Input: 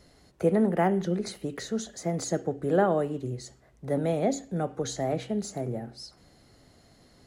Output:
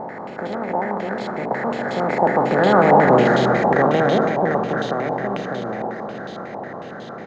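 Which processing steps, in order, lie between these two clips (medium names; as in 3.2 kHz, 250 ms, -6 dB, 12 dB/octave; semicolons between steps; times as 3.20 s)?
spectral levelling over time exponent 0.2; Doppler pass-by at 3.23 s, 15 m/s, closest 7.4 m; delay 290 ms -6 dB; step-sequenced low-pass 11 Hz 910–3300 Hz; trim +4.5 dB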